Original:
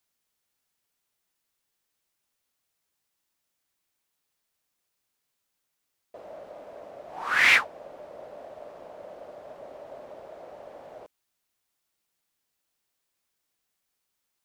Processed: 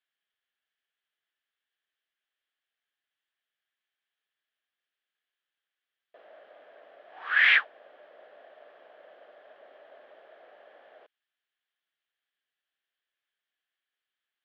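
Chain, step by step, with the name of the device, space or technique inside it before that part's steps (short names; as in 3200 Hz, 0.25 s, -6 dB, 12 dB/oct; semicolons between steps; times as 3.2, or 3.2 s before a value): phone earpiece (speaker cabinet 500–3600 Hz, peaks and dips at 550 Hz -3 dB, 940 Hz -8 dB, 1700 Hz +10 dB, 3200 Hz +8 dB); gain -6 dB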